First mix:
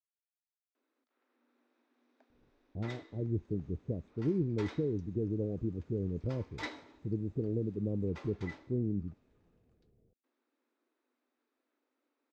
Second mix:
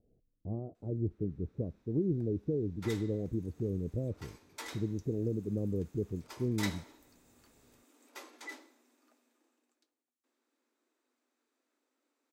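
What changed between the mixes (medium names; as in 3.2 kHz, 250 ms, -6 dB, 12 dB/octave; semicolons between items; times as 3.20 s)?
speech: entry -2.30 s; master: remove distance through air 180 m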